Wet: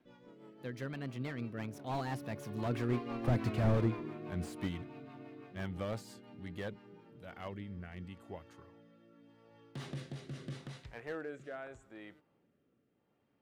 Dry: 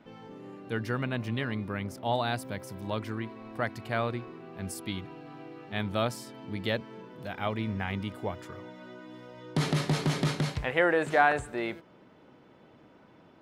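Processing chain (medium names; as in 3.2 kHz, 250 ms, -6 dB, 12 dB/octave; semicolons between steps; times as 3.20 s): Doppler pass-by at 3.45 s, 32 m/s, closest 13 m; rotary cabinet horn 6 Hz, later 0.8 Hz, at 6.62 s; slew-rate limiter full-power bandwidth 5.6 Hz; trim +9 dB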